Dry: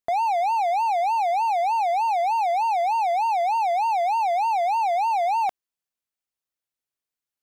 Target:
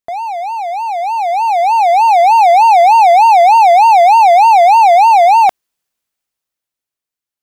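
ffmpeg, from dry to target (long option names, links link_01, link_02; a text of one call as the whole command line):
ffmpeg -i in.wav -af "dynaudnorm=framelen=200:gausssize=17:maxgain=15.5dB,volume=2dB" out.wav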